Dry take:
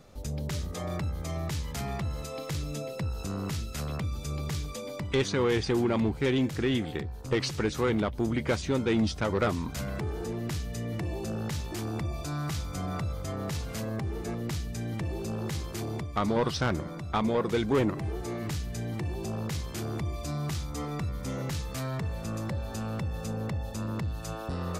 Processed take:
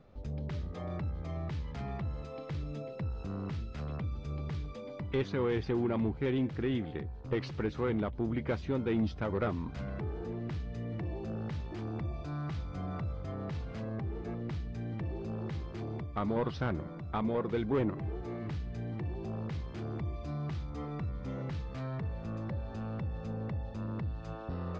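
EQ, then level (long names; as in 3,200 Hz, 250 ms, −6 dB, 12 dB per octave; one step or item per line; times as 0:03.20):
high-frequency loss of the air 90 metres
head-to-tape spacing loss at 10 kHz 34 dB
high-shelf EQ 3,200 Hz +9.5 dB
−3.5 dB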